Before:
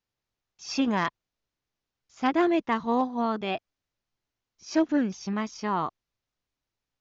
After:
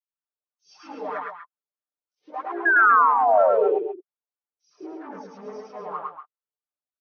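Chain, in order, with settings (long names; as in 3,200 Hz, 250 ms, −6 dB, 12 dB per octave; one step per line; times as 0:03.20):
pitch-shifted copies added +3 semitones −7 dB
comb filter 6.7 ms, depth 80%
downward compressor 2 to 1, threshold −27 dBFS, peak gain reduction 7.5 dB
leveller curve on the samples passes 3
LFO wah 3.1 Hz 410–1,400 Hz, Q 4.5
sound drawn into the spectrogram fall, 0:02.54–0:03.65, 360–1,700 Hz −16 dBFS
three-band delay without the direct sound highs, lows, mids 70/110 ms, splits 390/3,700 Hz
flanger 0.42 Hz, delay 1.6 ms, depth 5.7 ms, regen −22%
on a send: loudspeakers that aren't time-aligned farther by 36 metres −1 dB, 82 metres −9 dB
on the sum: brick-wall band-pass 140–6,400 Hz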